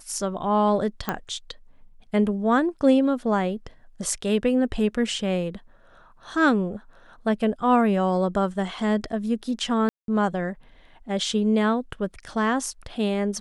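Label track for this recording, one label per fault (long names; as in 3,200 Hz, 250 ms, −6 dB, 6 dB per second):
1.090000	1.090000	click −11 dBFS
9.890000	10.080000	drop-out 192 ms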